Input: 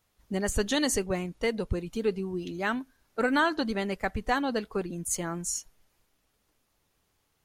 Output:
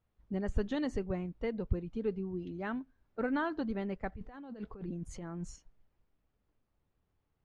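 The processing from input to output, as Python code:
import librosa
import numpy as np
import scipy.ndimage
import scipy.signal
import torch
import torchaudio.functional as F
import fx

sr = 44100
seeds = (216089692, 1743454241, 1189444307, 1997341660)

y = fx.spacing_loss(x, sr, db_at_10k=31)
y = fx.over_compress(y, sr, threshold_db=-39.0, ratio=-1.0, at=(4.12, 5.56))
y = fx.low_shelf(y, sr, hz=210.0, db=7.0)
y = y * 10.0 ** (-7.0 / 20.0)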